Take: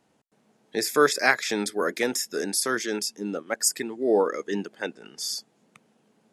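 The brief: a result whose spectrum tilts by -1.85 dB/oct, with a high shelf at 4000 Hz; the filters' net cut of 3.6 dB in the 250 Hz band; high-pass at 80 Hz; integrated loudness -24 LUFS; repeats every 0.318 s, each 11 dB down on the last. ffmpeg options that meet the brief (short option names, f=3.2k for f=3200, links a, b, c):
-af "highpass=80,equalizer=f=250:t=o:g=-5,highshelf=f=4k:g=6,aecho=1:1:318|636|954:0.282|0.0789|0.0221"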